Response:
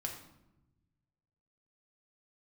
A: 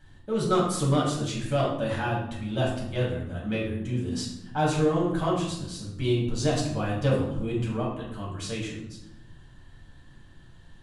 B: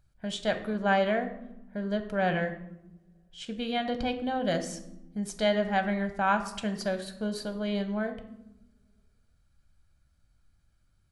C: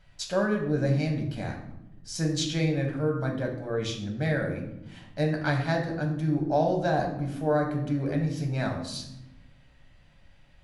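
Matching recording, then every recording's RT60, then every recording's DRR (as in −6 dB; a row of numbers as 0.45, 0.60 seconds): C; 0.95, 1.0, 0.95 seconds; −6.0, 7.0, 1.0 decibels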